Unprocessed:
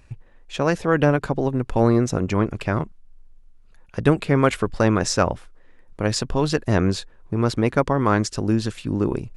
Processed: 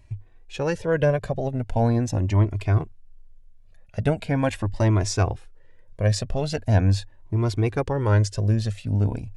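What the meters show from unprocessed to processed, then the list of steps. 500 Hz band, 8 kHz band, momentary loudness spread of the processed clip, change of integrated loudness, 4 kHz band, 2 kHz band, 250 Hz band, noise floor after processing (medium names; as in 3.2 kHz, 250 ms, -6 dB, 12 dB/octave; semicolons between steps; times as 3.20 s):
-4.0 dB, -4.0 dB, 7 LU, -2.0 dB, -5.0 dB, -6.0 dB, -5.5 dB, -51 dBFS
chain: graphic EQ with 31 bands 100 Hz +12 dB, 630 Hz +5 dB, 1.25 kHz -10 dB; Shepard-style flanger rising 0.41 Hz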